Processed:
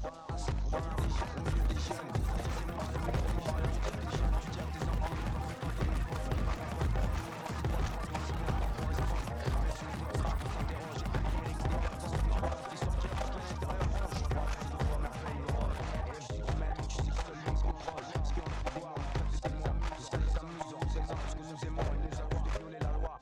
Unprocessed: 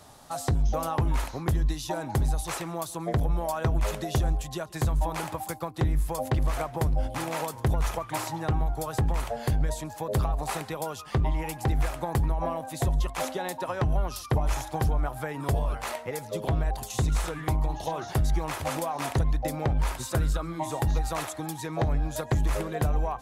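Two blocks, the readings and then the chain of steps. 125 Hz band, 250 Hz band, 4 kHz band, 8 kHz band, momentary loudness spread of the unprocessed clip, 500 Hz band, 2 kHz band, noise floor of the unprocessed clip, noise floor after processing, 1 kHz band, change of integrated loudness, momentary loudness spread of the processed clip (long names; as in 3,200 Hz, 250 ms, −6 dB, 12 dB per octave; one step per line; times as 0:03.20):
−6.5 dB, −6.5 dB, −6.0 dB, −11.5 dB, 5 LU, −8.0 dB, −5.5 dB, −42 dBFS, −44 dBFS, −7.5 dB, −7.0 dB, 4 LU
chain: low-pass filter 6,500 Hz 24 dB per octave
output level in coarse steps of 14 dB
asymmetric clip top −30 dBFS
on a send: backwards echo 690 ms −4.5 dB
on the sum: delay with pitch and tempo change per echo 719 ms, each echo +7 semitones, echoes 3, each echo −6 dB
level −2.5 dB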